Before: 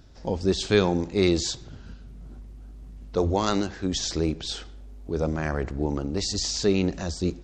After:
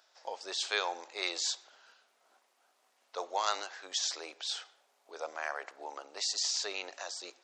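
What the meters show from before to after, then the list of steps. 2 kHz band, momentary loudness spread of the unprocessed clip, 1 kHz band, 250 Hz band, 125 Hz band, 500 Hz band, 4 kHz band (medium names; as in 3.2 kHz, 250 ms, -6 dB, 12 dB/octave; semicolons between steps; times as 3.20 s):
-3.5 dB, 23 LU, -4.0 dB, -30.5 dB, under -40 dB, -16.5 dB, -3.5 dB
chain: high-pass 670 Hz 24 dB/octave; trim -3.5 dB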